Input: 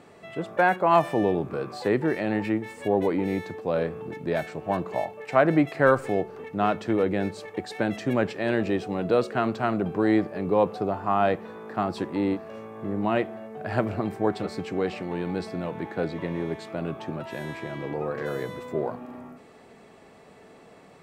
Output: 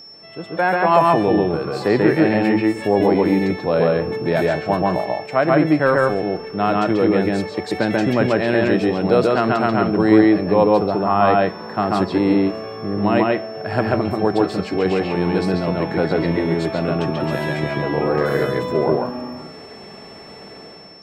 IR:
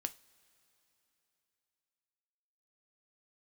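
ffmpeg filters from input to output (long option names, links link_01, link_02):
-filter_complex "[0:a]dynaudnorm=framelen=240:gausssize=5:maxgain=11.5dB,aeval=exprs='val(0)+0.0158*sin(2*PI*5400*n/s)':channel_layout=same,asplit=2[link_01][link_02];[1:a]atrim=start_sample=2205,lowpass=4600,adelay=138[link_03];[link_02][link_03]afir=irnorm=-1:irlink=0,volume=1dB[link_04];[link_01][link_04]amix=inputs=2:normalize=0,volume=-2.5dB"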